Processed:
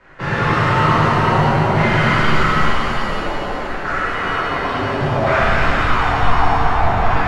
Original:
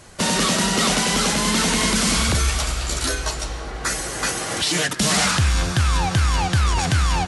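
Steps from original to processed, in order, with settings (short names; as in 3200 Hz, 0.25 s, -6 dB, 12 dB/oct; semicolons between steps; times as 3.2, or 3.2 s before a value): LFO low-pass saw down 0.57 Hz 760–1900 Hz; frequency shift -66 Hz; shimmer reverb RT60 2.9 s, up +7 st, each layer -8 dB, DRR -11.5 dB; gain -7.5 dB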